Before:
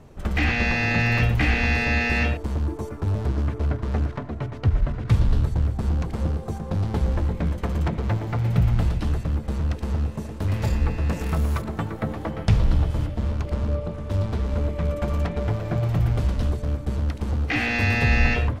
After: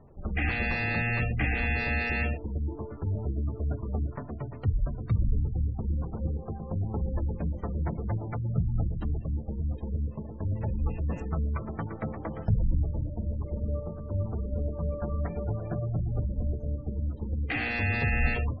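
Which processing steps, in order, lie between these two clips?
spectral gate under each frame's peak -25 dB strong; hum notches 60/120/180/240/300 Hz; trim -6 dB

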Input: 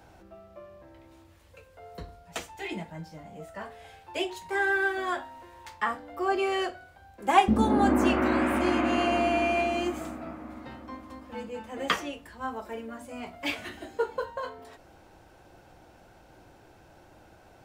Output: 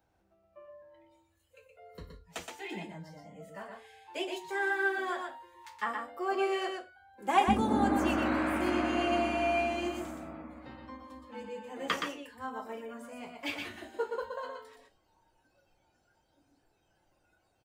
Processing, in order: delay 121 ms -4.5 dB; spectral noise reduction 15 dB; trim -5.5 dB

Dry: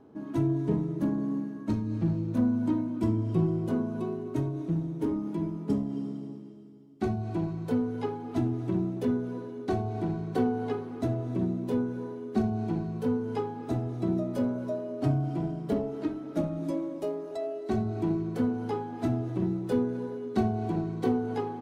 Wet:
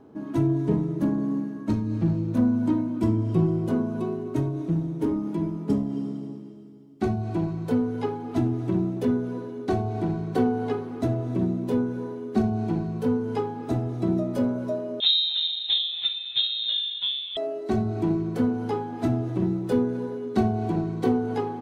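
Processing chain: 15.00–17.37 s: frequency inversion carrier 3.9 kHz; trim +4 dB

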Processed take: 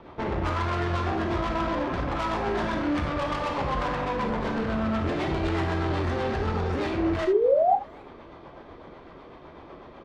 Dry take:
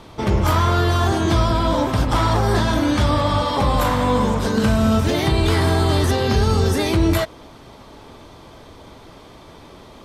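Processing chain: low-pass 1.8 kHz 12 dB/octave; bass shelf 280 Hz -9 dB; peak limiter -16 dBFS, peak gain reduction 5.5 dB; rotary cabinet horn 8 Hz; valve stage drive 30 dB, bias 0.6; painted sound rise, 7.27–7.76 s, 360–830 Hz -26 dBFS; speakerphone echo 270 ms, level -27 dB; gated-style reverb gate 100 ms flat, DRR 4 dB; trim +4.5 dB

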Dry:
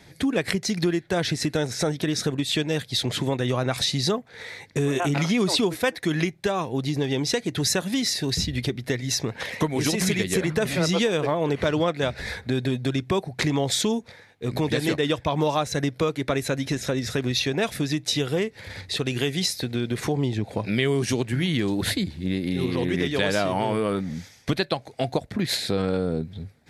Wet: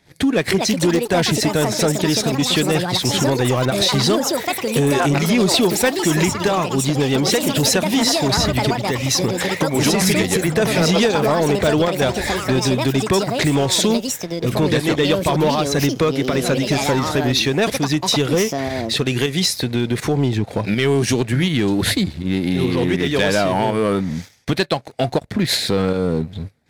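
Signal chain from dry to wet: volume shaper 81 bpm, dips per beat 1, -7 dB, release 172 ms; ever faster or slower copies 353 ms, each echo +6 st, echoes 2, each echo -6 dB; waveshaping leveller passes 2

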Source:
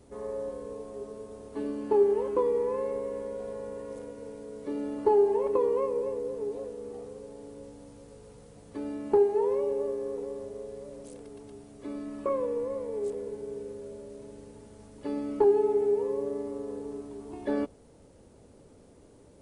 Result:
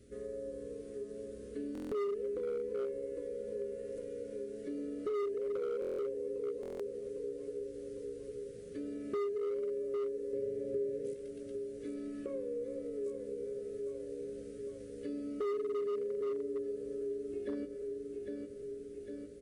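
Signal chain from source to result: doubling 17 ms -7.5 dB; on a send at -15.5 dB: reverberation RT60 1.5 s, pre-delay 78 ms; on the sum: dynamic bell 2 kHz, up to -6 dB, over -47 dBFS, Q 0.86; Chebyshev band-stop 490–1600 Hz, order 2; feedback delay 804 ms, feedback 56%, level -8 dB; overload inside the chain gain 21.5 dB; 10.33–11.14 s: graphic EQ 125/250/500/1000/2000 Hz +11/+5/+8/-4/+6 dB; compression 2:1, threshold -37 dBFS, peak gain reduction 9.5 dB; buffer glitch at 1.73/5.80/6.61 s, samples 1024, times 7; trim -3 dB

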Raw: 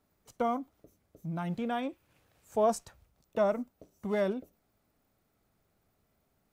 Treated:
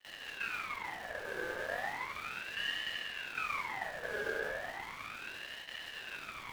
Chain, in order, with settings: spectral levelling over time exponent 0.2; cascade formant filter e; small samples zeroed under -38 dBFS; simulated room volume 130 m³, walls hard, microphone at 0.5 m; flange 0.63 Hz, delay 9.8 ms, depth 7.8 ms, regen -78%; Chebyshev shaper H 3 -28 dB, 8 -24 dB, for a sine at -22 dBFS; gate with hold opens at -34 dBFS; ring modulator with a swept carrier 1.7 kHz, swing 40%, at 0.35 Hz

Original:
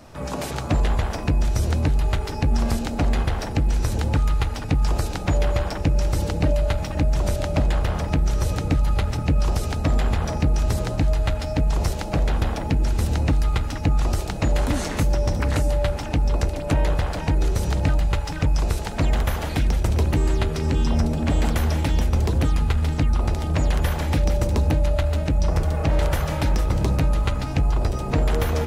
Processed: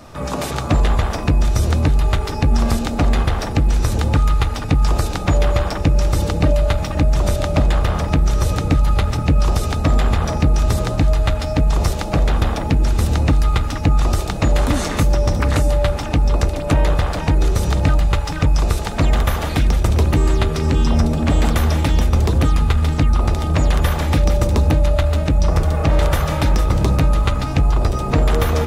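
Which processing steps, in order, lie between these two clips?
small resonant body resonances 1.2/3.6 kHz, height 8 dB, ringing for 40 ms; trim +5 dB

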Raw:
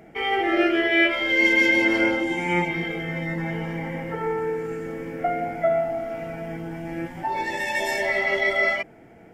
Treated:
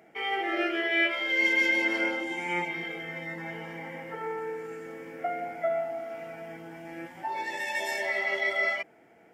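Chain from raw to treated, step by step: high-pass 520 Hz 6 dB/octave; trim -5 dB

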